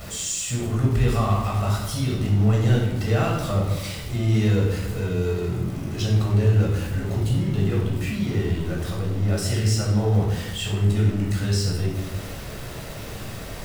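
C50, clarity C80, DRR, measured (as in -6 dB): 2.0 dB, 5.5 dB, -3.0 dB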